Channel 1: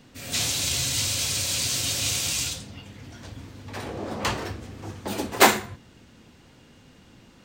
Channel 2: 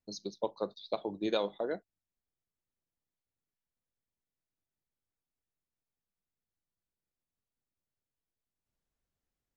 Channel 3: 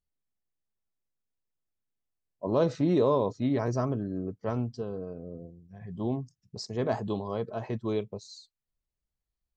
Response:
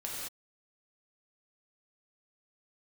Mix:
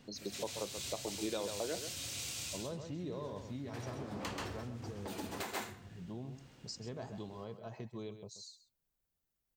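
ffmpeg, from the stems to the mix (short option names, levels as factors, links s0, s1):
-filter_complex "[0:a]volume=0.422,asplit=2[s0][s1];[s1]volume=0.316[s2];[1:a]volume=0.75,asplit=3[s3][s4][s5];[s4]volume=0.335[s6];[2:a]aemphasis=mode=production:type=75fm,equalizer=f=150:t=o:w=0.77:g=6.5,adelay=100,volume=0.299,asplit=2[s7][s8];[s8]volume=0.168[s9];[s5]apad=whole_len=328153[s10];[s0][s10]sidechaincompress=threshold=0.00251:ratio=3:attack=21:release=1390[s11];[s11][s7]amix=inputs=2:normalize=0,acompressor=threshold=0.00794:ratio=3,volume=1[s12];[s2][s6][s9]amix=inputs=3:normalize=0,aecho=0:1:132:1[s13];[s3][s12][s13]amix=inputs=3:normalize=0,alimiter=level_in=1.41:limit=0.0631:level=0:latency=1:release=245,volume=0.708"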